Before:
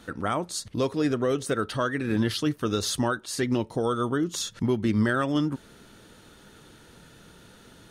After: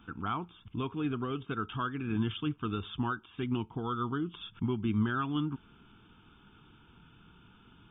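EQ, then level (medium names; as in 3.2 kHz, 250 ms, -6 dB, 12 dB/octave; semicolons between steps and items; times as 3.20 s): brick-wall FIR low-pass 3.7 kHz; static phaser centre 2.8 kHz, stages 8; -4.0 dB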